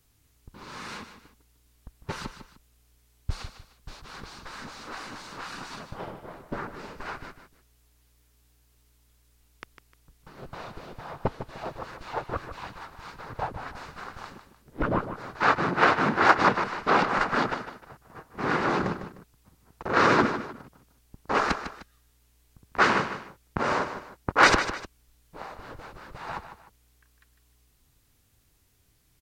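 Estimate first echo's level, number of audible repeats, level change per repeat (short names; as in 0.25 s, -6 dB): -10.5 dB, 2, -9.0 dB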